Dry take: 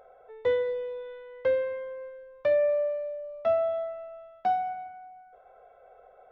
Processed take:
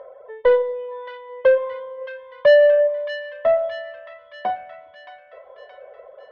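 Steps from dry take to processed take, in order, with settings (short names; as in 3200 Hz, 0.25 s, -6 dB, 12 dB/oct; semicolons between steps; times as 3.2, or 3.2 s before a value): reverb removal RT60 0.83 s; HPF 49 Hz; bell 710 Hz -6.5 dB 0.24 oct; small resonant body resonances 580/1000/1800/3100 Hz, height 18 dB, ringing for 30 ms; soft clip -12.5 dBFS, distortion -9 dB; air absorption 160 m; on a send: thin delay 0.622 s, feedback 57%, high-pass 1700 Hz, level -6.5 dB; on the sum: Schroeder reverb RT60 0.47 s, combs from 33 ms, DRR 18.5 dB; gain +4 dB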